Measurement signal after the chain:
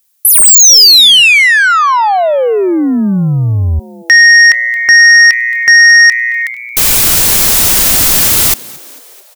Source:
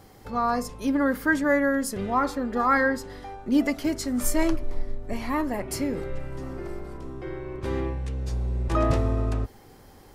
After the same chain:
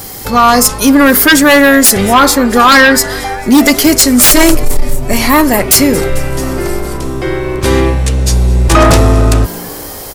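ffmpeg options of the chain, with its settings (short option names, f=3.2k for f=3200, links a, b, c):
-filter_complex "[0:a]asplit=6[a][b][c][d][e][f];[b]adelay=222,afreqshift=120,volume=-23dB[g];[c]adelay=444,afreqshift=240,volume=-27.2dB[h];[d]adelay=666,afreqshift=360,volume=-31.3dB[i];[e]adelay=888,afreqshift=480,volume=-35.5dB[j];[f]adelay=1110,afreqshift=600,volume=-39.6dB[k];[a][g][h][i][j][k]amix=inputs=6:normalize=0,crystalizer=i=4.5:c=0,aeval=exprs='1*sin(PI/2*6.31*val(0)/1)':c=same,volume=-1dB"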